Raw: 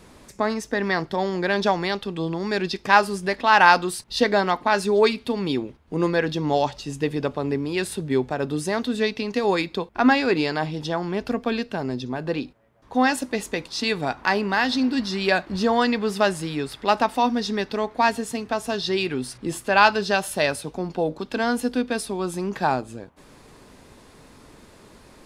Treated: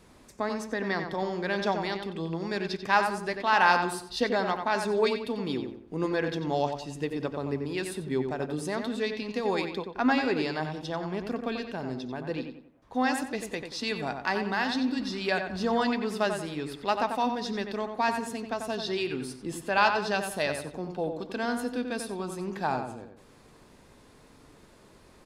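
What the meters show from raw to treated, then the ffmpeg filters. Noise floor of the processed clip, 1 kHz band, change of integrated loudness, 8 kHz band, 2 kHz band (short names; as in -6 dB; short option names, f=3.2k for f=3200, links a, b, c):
-56 dBFS, -6.5 dB, -6.5 dB, -7.5 dB, -6.5 dB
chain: -filter_complex "[0:a]asplit=2[a][b];[b]adelay=91,lowpass=f=2.7k:p=1,volume=-6dB,asplit=2[c][d];[d]adelay=91,lowpass=f=2.7k:p=1,volume=0.39,asplit=2[e][f];[f]adelay=91,lowpass=f=2.7k:p=1,volume=0.39,asplit=2[g][h];[h]adelay=91,lowpass=f=2.7k:p=1,volume=0.39,asplit=2[i][j];[j]adelay=91,lowpass=f=2.7k:p=1,volume=0.39[k];[a][c][e][g][i][k]amix=inputs=6:normalize=0,volume=-7.5dB"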